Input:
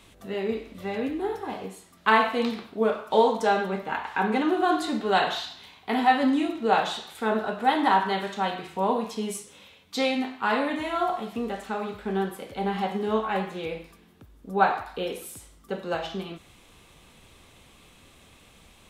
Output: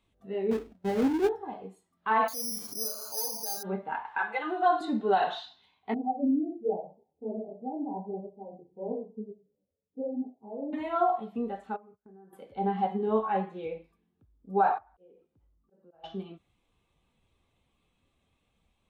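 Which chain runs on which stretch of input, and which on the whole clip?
0:00.51–0:01.29: each half-wave held at its own peak + parametric band 1,100 Hz −5 dB 0.22 octaves + noise gate with hold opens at −31 dBFS, closes at −36 dBFS
0:02.28–0:03.63: gain into a clipping stage and back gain 19.5 dB + upward compression, threshold −27 dBFS + bad sample-rate conversion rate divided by 8×, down filtered, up zero stuff
0:04.18–0:04.81: high-pass filter 680 Hz + comb filter 5.9 ms, depth 86%
0:05.94–0:10.73: inverse Chebyshev low-pass filter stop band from 1,600 Hz, stop band 50 dB + flutter between parallel walls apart 10.9 metres, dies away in 0.33 s + micro pitch shift up and down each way 48 cents
0:11.76–0:12.33: noise gate −38 dBFS, range −24 dB + Butterworth band-reject 4,400 Hz, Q 0.58 + downward compressor 16 to 1, threshold −40 dBFS
0:14.78–0:16.04: volume swells 353 ms + downward compressor 3 to 1, threshold −41 dBFS + head-to-tape spacing loss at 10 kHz 35 dB
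whole clip: parametric band 810 Hz +2 dB; brickwall limiter −13.5 dBFS; every bin expanded away from the loudest bin 1.5 to 1

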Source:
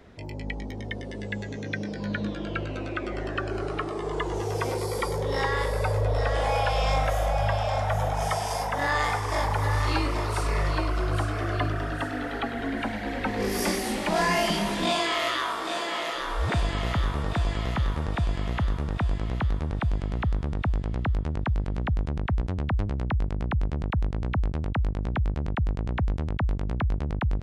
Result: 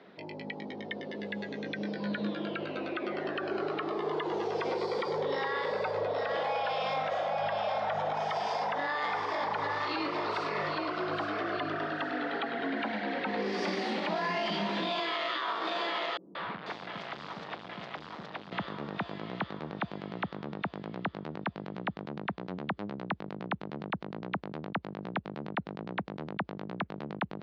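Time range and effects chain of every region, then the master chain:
0:16.17–0:18.52: hard clipping −33 dBFS + three-band delay without the direct sound lows, mids, highs 180/490 ms, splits 320/4,000 Hz
whole clip: elliptic band-pass filter 190–4,300 Hz, stop band 60 dB; parametric band 240 Hz −7.5 dB 0.25 octaves; brickwall limiter −23.5 dBFS

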